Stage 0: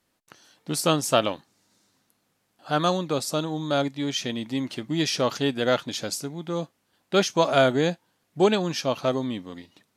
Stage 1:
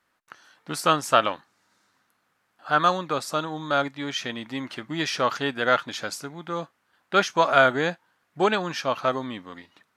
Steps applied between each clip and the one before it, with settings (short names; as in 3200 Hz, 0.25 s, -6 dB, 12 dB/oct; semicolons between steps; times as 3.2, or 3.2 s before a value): bell 1400 Hz +14 dB 1.8 oct; gain -6 dB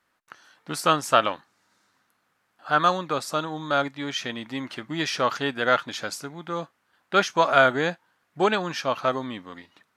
nothing audible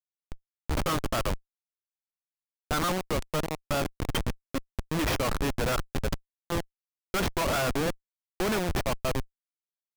Schmitt trigger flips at -25 dBFS